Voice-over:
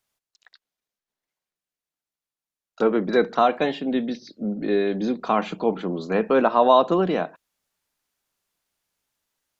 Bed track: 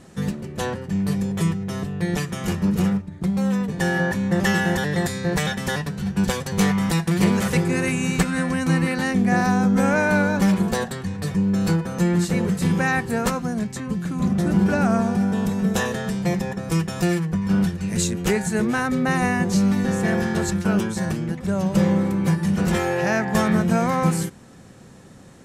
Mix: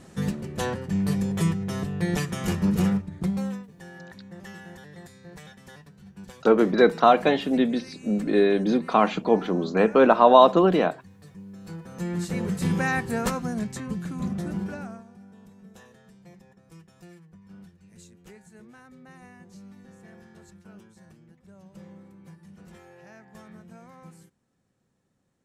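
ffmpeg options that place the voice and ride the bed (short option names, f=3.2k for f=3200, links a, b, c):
-filter_complex "[0:a]adelay=3650,volume=2dB[a];[1:a]volume=16.5dB,afade=t=out:st=3.2:d=0.46:silence=0.0944061,afade=t=in:st=11.64:d=1.08:silence=0.11885,afade=t=out:st=13.75:d=1.29:silence=0.0630957[b];[a][b]amix=inputs=2:normalize=0"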